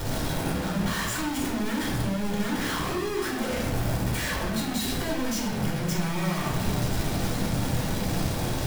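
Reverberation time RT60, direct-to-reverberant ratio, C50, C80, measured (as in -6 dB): 1.0 s, -4.0 dB, 3.5 dB, 6.0 dB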